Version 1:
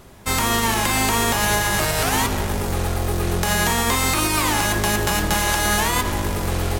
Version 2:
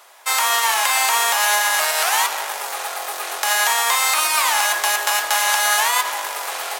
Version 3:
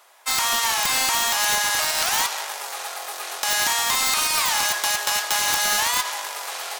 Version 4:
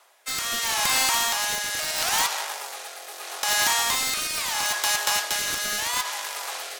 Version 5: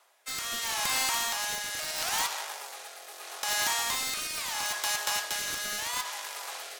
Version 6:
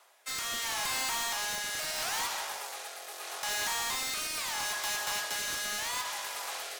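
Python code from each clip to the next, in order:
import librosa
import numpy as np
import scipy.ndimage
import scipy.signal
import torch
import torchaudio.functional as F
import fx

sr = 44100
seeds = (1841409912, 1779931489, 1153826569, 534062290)

y1 = scipy.signal.sosfilt(scipy.signal.butter(4, 690.0, 'highpass', fs=sr, output='sos'), x)
y1 = y1 * librosa.db_to_amplitude(3.5)
y2 = fx.dynamic_eq(y1, sr, hz=5100.0, q=0.78, threshold_db=-35.0, ratio=4.0, max_db=7)
y2 = (np.mod(10.0 ** (5.0 / 20.0) * y2 + 1.0, 2.0) - 1.0) / 10.0 ** (5.0 / 20.0)
y2 = y2 * librosa.db_to_amplitude(-6.0)
y3 = fx.rotary(y2, sr, hz=0.75)
y4 = fx.echo_feedback(y3, sr, ms=64, feedback_pct=35, wet_db=-19.0)
y4 = y4 * librosa.db_to_amplitude(-6.5)
y5 = 10.0 ** (-32.0 / 20.0) * np.tanh(y4 / 10.0 ** (-32.0 / 20.0))
y5 = y5 * librosa.db_to_amplitude(2.5)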